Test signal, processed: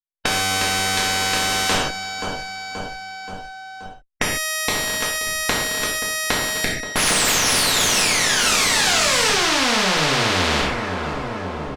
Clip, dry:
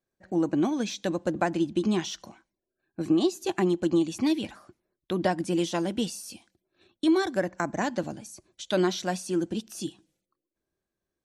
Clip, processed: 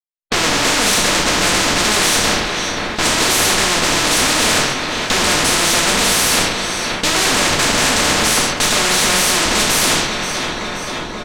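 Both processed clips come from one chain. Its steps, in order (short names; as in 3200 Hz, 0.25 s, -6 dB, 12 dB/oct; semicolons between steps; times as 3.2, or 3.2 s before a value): minimum comb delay 0.49 ms; gate -47 dBFS, range -23 dB; HPF 100 Hz 6 dB/oct; tone controls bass -14 dB, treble +9 dB; sample leveller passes 5; in parallel at +2 dB: limiter -19.5 dBFS; on the sum: sample leveller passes 2; Schmitt trigger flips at -36 dBFS; tape spacing loss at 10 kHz 24 dB; on a send: feedback echo 0.528 s, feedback 53%, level -19.5 dB; on the sum: non-linear reverb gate 0.17 s falling, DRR -5 dB; spectral compressor 4:1; gain -4.5 dB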